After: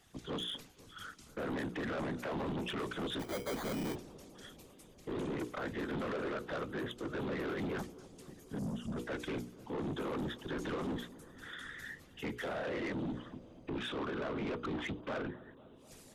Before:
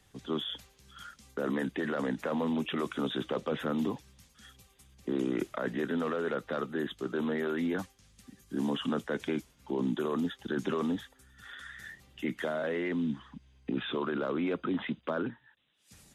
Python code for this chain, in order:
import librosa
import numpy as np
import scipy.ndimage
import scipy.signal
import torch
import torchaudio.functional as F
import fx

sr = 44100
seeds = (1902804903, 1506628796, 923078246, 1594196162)

p1 = fx.whisperise(x, sr, seeds[0])
p2 = fx.hum_notches(p1, sr, base_hz=60, count=8)
p3 = fx.sample_hold(p2, sr, seeds[1], rate_hz=2700.0, jitter_pct=0, at=(3.19, 3.94), fade=0.02)
p4 = fx.spec_box(p3, sr, start_s=8.59, length_s=0.38, low_hz=260.0, high_hz=4400.0, gain_db=-15)
p5 = 10.0 ** (-34.0 / 20.0) * np.tanh(p4 / 10.0 ** (-34.0 / 20.0))
y = p5 + fx.echo_bbd(p5, sr, ms=246, stages=2048, feedback_pct=75, wet_db=-19, dry=0)